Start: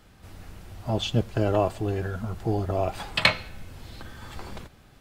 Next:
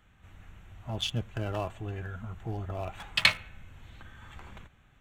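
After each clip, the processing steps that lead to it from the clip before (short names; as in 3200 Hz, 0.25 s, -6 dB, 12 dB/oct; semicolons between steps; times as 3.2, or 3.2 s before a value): Wiener smoothing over 9 samples; passive tone stack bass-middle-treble 5-5-5; notch 4100 Hz, Q 21; gain +7.5 dB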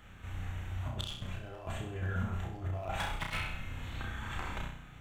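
negative-ratio compressor -40 dBFS, ratio -0.5; on a send: flutter echo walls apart 5.6 m, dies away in 0.57 s; on the sum: gain +1 dB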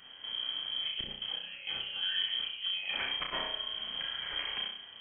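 inverted band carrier 3200 Hz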